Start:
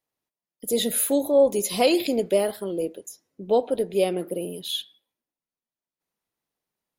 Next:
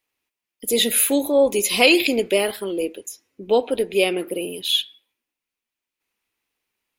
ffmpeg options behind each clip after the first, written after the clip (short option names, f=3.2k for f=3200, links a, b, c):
-af "equalizer=f=160:t=o:w=0.67:g=-11,equalizer=f=630:t=o:w=0.67:g=-6,equalizer=f=2.5k:t=o:w=0.67:g=10,volume=5.5dB"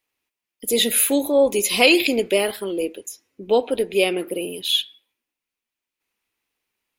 -af anull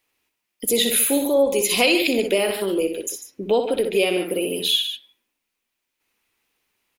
-af "aecho=1:1:61.22|145.8:0.398|0.251,acompressor=threshold=-28dB:ratio=2,volume=6dB"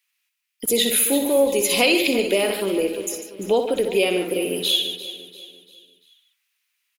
-filter_complex "[0:a]acrossover=split=1300[a][b];[a]aeval=exprs='val(0)*gte(abs(val(0)),0.0075)':c=same[c];[c][b]amix=inputs=2:normalize=0,aecho=1:1:344|688|1032|1376:0.2|0.0838|0.0352|0.0148"